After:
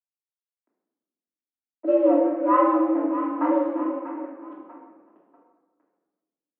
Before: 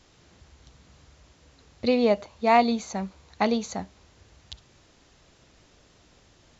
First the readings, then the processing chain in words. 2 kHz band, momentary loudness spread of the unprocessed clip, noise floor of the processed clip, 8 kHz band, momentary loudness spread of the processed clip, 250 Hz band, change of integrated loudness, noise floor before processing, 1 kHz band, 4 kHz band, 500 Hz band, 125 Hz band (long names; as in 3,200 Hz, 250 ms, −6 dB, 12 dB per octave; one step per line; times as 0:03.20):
−7.0 dB, 15 LU, below −85 dBFS, can't be measured, 17 LU, +5.5 dB, +3.0 dB, −59 dBFS, +1.5 dB, below −20 dB, +3.0 dB, below −25 dB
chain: phaser with its sweep stopped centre 450 Hz, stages 8
on a send: echo with a time of its own for lows and highs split 590 Hz, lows 358 ms, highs 640 ms, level −10 dB
on the sum: slack as between gear wheels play −37 dBFS
high-frequency loss of the air 370 metres
single-sideband voice off tune +90 Hz 160–2,500 Hz
rectangular room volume 810 cubic metres, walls mixed, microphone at 2.9 metres
low-pass that shuts in the quiet parts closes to 1,400 Hz, open at −17 dBFS